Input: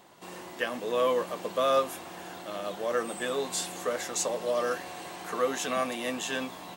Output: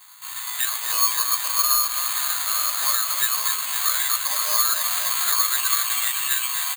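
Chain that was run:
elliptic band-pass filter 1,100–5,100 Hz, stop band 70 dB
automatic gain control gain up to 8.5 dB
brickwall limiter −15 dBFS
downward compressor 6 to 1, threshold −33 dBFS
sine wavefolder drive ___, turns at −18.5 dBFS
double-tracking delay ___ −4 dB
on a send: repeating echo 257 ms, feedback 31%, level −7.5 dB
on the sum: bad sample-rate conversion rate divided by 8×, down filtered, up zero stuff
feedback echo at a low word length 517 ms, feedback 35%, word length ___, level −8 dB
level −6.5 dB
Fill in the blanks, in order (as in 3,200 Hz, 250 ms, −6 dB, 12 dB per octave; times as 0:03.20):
8 dB, 15 ms, 6 bits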